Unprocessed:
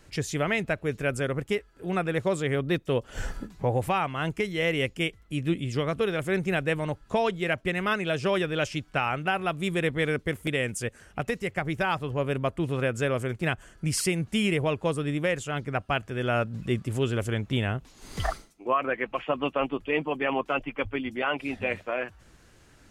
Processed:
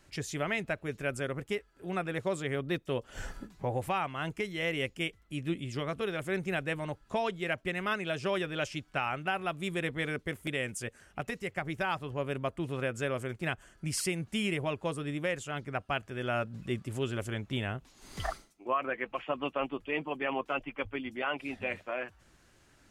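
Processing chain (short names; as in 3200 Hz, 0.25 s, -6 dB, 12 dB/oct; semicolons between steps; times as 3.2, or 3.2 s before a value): low shelf 210 Hz -4 dB; notch 470 Hz, Q 12; gain -5 dB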